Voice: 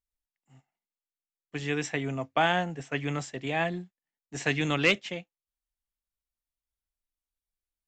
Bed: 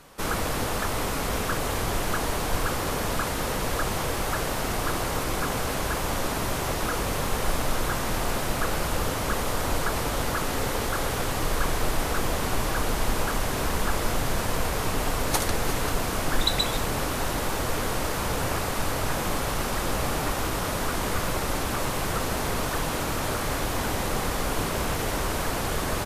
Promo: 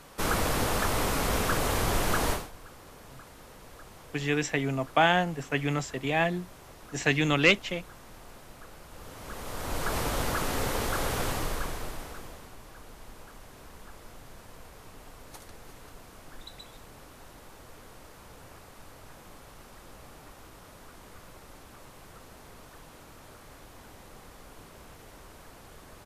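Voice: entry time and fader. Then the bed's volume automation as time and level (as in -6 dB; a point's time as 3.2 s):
2.60 s, +2.5 dB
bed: 2.32 s 0 dB
2.52 s -22 dB
8.87 s -22 dB
9.96 s -2.5 dB
11.28 s -2.5 dB
12.56 s -22.5 dB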